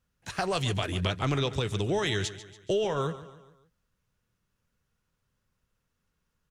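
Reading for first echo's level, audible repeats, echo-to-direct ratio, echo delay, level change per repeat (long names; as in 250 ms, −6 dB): −14.5 dB, 4, −13.5 dB, 142 ms, −6.5 dB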